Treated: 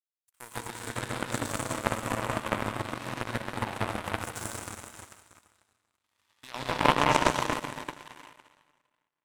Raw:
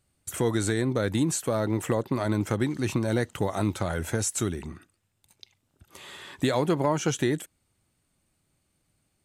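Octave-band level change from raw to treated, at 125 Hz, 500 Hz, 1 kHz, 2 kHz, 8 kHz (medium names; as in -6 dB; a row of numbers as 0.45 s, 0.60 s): -8.5 dB, -6.0 dB, +5.0 dB, +3.0 dB, -6.0 dB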